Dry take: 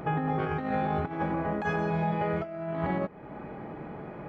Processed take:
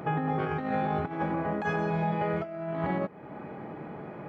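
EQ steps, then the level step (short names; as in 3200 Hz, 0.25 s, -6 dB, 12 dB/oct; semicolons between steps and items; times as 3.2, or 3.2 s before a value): HPF 94 Hz; 0.0 dB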